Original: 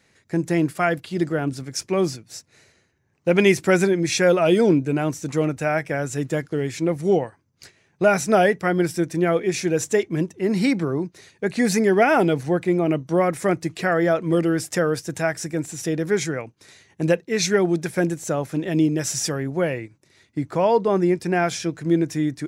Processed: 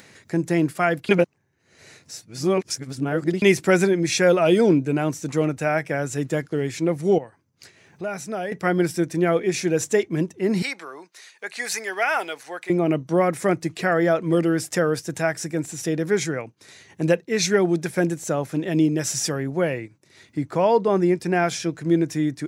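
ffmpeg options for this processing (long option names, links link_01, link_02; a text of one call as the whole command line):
ffmpeg -i in.wav -filter_complex "[0:a]asettb=1/sr,asplit=3[link_01][link_02][link_03];[link_01]atrim=end=7.184[link_04];[link_02]atrim=start=7.18:end=8.52,asetpts=PTS-STARTPTS,afade=type=in:duration=0.004:curve=qsin,afade=type=out:start_time=1.336:duration=0.004:curve=qsin,acompressor=threshold=-47dB:ratio=1.5:attack=3.2:release=140:knee=1:detection=peak[link_05];[link_03]atrim=start=8.516[link_06];[link_04][link_05]acrossfade=duration=0.004:curve1=hsin:curve2=qsin[link_07];[link_07][link_06]acrossfade=duration=0.004:curve1=qsin:curve2=hsin,asettb=1/sr,asplit=3[link_08][link_09][link_10];[link_08]atrim=end=10.624[link_11];[link_09]atrim=start=10.62:end=12.7,asetpts=PTS-STARTPTS,afade=type=in:duration=0.004:curve=qsin,afade=type=out:start_time=2.076:duration=0.004:curve=qsin,highpass=990[link_12];[link_10]atrim=start=12.696[link_13];[link_11][link_12]acrossfade=duration=0.004:curve1=hsin:curve2=qsin[link_14];[link_14][link_13]acrossfade=duration=0.004:curve1=qsin:curve2=hsin,asplit=3[link_15][link_16][link_17];[link_15]atrim=end=1.092[link_18];[link_16]atrim=start=1.088:end=3.422,asetpts=PTS-STARTPTS,areverse[link_19];[link_17]atrim=start=3.418[link_20];[link_18][link_19]acrossfade=duration=0.004:curve1=hsin:curve2=hsin[link_21];[link_21][link_20]acrossfade=duration=0.004:curve1=hsin:curve2=hsin,highpass=90,acompressor=mode=upward:threshold=-39dB:ratio=2.5" out.wav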